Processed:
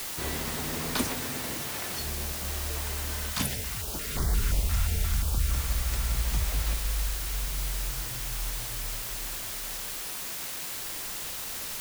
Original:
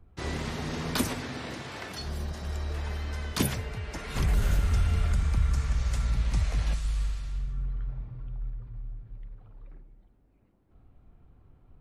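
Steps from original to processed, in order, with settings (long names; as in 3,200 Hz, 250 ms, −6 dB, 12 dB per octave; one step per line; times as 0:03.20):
dynamic equaliser 120 Hz, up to −5 dB, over −38 dBFS, Q 0.76
bit-depth reduction 6 bits, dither triangular
0:03.29–0:05.50: notch on a step sequencer 5.7 Hz 380–2,600 Hz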